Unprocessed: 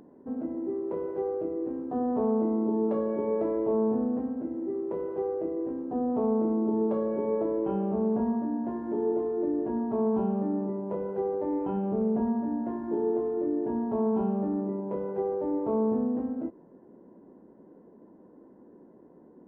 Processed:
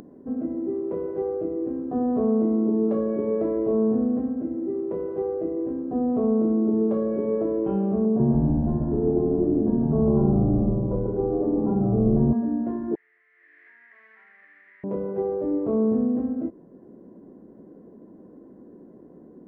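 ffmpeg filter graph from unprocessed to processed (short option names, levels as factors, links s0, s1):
-filter_complex "[0:a]asettb=1/sr,asplit=3[s0][s1][s2];[s0]atrim=end=8.054[s3];[s1]atrim=start=8.05:end=12.33,asetpts=PTS-STARTPTS,afade=t=in:d=0.004:c=qsin,afade=t=out:st=4.276:d=0.004:c=qsin,lowpass=f=1300:w=0.5412,lowpass=f=1300:w=1.3066,asplit=7[s4][s5][s6][s7][s8][s9][s10];[s5]adelay=143,afreqshift=-79,volume=0.708[s11];[s6]adelay=286,afreqshift=-158,volume=0.339[s12];[s7]adelay=429,afreqshift=-237,volume=0.162[s13];[s8]adelay=572,afreqshift=-316,volume=0.0785[s14];[s9]adelay=715,afreqshift=-395,volume=0.0376[s15];[s10]adelay=858,afreqshift=-474,volume=0.018[s16];[s4][s11][s12][s13][s14][s15][s16]amix=inputs=7:normalize=0,atrim=end_sample=188748[s17];[s2]atrim=start=12.326[s18];[s3][s17]acrossfade=d=0.004:c1=hsin:c2=qsin[s19];[s19][s18]acrossfade=d=0.004:c1=qsin:c2=hsin,asettb=1/sr,asplit=3[s20][s21][s22];[s20]atrim=end=12.954[s23];[s21]atrim=start=12.95:end=14.84,asetpts=PTS-STARTPTS,afade=t=in:d=0.004:c=qsin,afade=t=out:st=1.886:d=0.004:c=qsin,aeval=exprs='sgn(val(0))*max(abs(val(0))-0.00355,0)':c=same,aeval=exprs='val(0)+0.0126*(sin(2*PI*60*n/s)+sin(2*PI*2*60*n/s)/2+sin(2*PI*3*60*n/s)/3+sin(2*PI*4*60*n/s)/4+sin(2*PI*5*60*n/s)/5)':c=same,asuperpass=centerf=1900:order=4:qfactor=4.6[s24];[s22]atrim=start=14.836[s25];[s23][s24]acrossfade=d=0.004:c1=hsin:c2=qsin[s26];[s26][s25]acrossfade=d=0.004:c1=qsin:c2=hsin,lowshelf=f=390:g=7.5,bandreject=f=900:w=6.2,acompressor=mode=upward:threshold=0.00794:ratio=2.5"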